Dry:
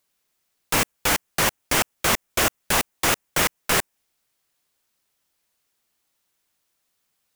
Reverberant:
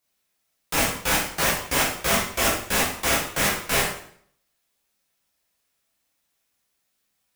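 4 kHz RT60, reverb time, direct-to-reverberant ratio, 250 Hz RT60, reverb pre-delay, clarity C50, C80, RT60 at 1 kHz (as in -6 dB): 0.55 s, 0.60 s, -6.0 dB, 0.65 s, 8 ms, 4.0 dB, 7.5 dB, 0.55 s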